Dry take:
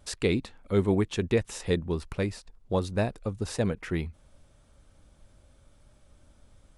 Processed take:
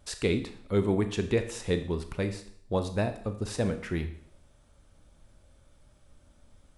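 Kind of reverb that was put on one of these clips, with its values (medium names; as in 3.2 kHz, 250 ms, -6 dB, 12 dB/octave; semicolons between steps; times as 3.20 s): Schroeder reverb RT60 0.6 s, combs from 26 ms, DRR 8.5 dB; trim -1.5 dB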